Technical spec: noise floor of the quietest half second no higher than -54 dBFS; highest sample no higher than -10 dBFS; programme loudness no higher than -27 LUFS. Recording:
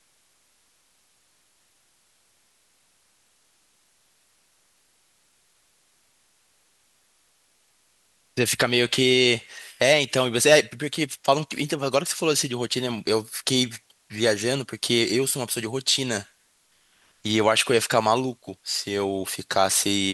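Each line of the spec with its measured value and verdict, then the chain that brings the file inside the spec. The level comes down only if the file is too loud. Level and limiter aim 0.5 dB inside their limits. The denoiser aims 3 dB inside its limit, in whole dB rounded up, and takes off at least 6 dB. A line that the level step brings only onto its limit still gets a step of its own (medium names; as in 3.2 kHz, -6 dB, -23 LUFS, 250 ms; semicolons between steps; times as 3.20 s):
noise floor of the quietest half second -65 dBFS: pass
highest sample -3.5 dBFS: fail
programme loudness -22.5 LUFS: fail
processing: trim -5 dB; peak limiter -10.5 dBFS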